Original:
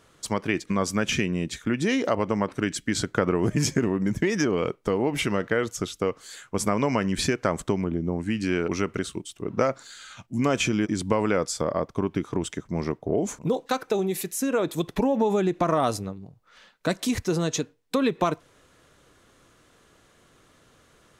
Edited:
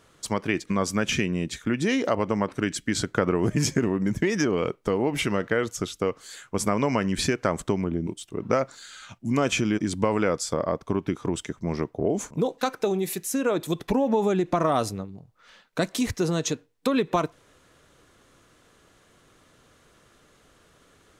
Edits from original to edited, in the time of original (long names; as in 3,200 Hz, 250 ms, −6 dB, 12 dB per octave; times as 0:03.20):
0:08.07–0:09.15: remove